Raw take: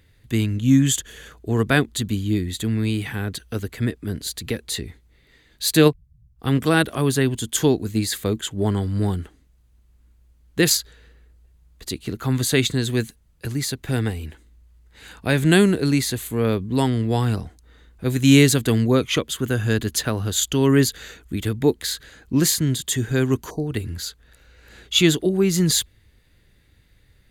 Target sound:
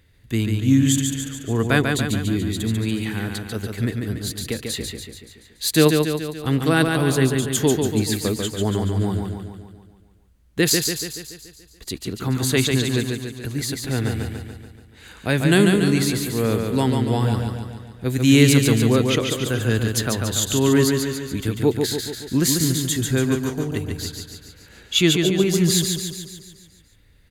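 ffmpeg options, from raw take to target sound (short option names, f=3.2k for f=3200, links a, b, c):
-af "aecho=1:1:143|286|429|572|715|858|1001|1144:0.596|0.334|0.187|0.105|0.0586|0.0328|0.0184|0.0103,volume=-1dB"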